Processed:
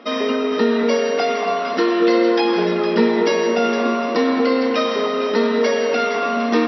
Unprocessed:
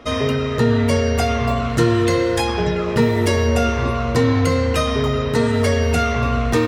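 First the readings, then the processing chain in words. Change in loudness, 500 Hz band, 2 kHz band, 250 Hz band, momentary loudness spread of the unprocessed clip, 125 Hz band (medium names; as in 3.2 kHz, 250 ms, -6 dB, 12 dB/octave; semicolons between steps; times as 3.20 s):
0.0 dB, +2.5 dB, +0.5 dB, +0.5 dB, 3 LU, under -15 dB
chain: FFT band-pass 180–5800 Hz; echo whose repeats swap between lows and highs 230 ms, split 1.3 kHz, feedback 65%, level -5 dB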